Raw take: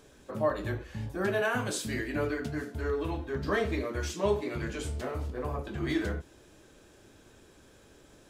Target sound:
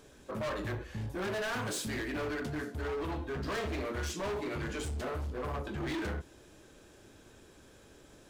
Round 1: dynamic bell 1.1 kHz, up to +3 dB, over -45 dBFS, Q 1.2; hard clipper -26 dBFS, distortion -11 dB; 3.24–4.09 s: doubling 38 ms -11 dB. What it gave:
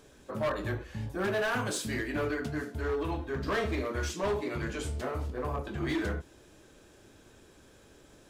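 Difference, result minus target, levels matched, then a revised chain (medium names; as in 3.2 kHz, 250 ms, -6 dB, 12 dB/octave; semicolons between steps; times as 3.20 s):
hard clipper: distortion -6 dB
dynamic bell 1.1 kHz, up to +3 dB, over -45 dBFS, Q 1.2; hard clipper -33 dBFS, distortion -6 dB; 3.24–4.09 s: doubling 38 ms -11 dB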